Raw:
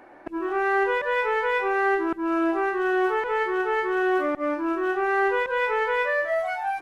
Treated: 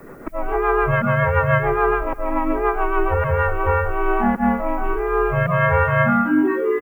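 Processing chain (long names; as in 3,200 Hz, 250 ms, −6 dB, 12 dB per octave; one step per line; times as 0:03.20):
high-pass filter 280 Hz 6 dB per octave
in parallel at +2 dB: brickwall limiter −25 dBFS, peak gain reduction 10 dB
on the sum: single-sideband voice off tune −350 Hz 410–3,100 Hz
rotating-speaker cabinet horn 7 Hz, later 0.7 Hz, at 0:03.10
background noise violet −65 dBFS
on a send: single-tap delay 374 ms −24 dB
on the sum: pitch-shifted copies added −3 semitones −6 dB
level +5.5 dB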